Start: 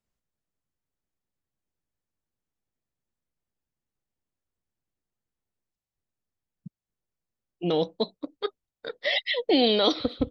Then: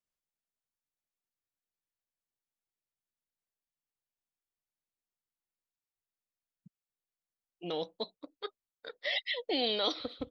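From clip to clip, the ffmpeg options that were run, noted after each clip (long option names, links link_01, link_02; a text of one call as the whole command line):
ffmpeg -i in.wav -af "lowshelf=frequency=390:gain=-11,volume=-6.5dB" out.wav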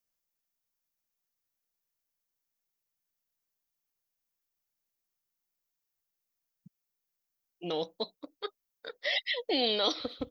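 ffmpeg -i in.wav -af "aexciter=amount=1.6:drive=4.4:freq=5100,volume=2.5dB" out.wav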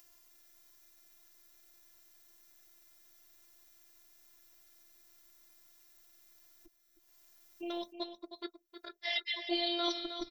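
ffmpeg -i in.wav -af "acompressor=mode=upward:threshold=-37dB:ratio=2.5,afftfilt=real='hypot(re,im)*cos(PI*b)':imag='0':win_size=512:overlap=0.75,aecho=1:1:314:0.316,volume=-1dB" out.wav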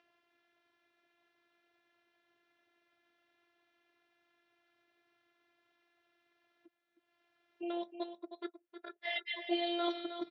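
ffmpeg -i in.wav -af "highpass=frequency=130:width=0.5412,highpass=frequency=130:width=1.3066,equalizer=frequency=140:width_type=q:width=4:gain=-5,equalizer=frequency=240:width_type=q:width=4:gain=-7,equalizer=frequency=1100:width_type=q:width=4:gain=-5,equalizer=frequency=2200:width_type=q:width=4:gain=-4,lowpass=frequency=2800:width=0.5412,lowpass=frequency=2800:width=1.3066,volume=2dB" out.wav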